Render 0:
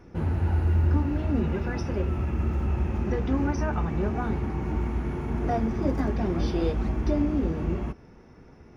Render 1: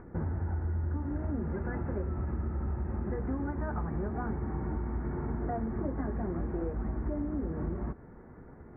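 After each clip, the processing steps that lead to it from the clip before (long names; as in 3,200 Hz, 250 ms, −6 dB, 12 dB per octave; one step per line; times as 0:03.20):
downward compressor, threshold −30 dBFS, peak gain reduction 12 dB
Butterworth low-pass 1,900 Hz 48 dB per octave
upward compression, threshold −47 dBFS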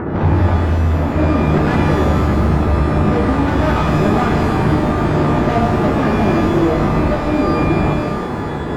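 bass and treble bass +9 dB, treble +1 dB
mid-hump overdrive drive 35 dB, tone 1,200 Hz, clips at −15 dBFS
reverb with rising layers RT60 1.1 s, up +12 semitones, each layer −8 dB, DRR 0.5 dB
level +4.5 dB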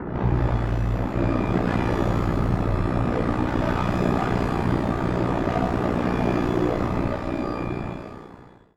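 fade-out on the ending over 1.96 s
ring modulation 30 Hz
level −5.5 dB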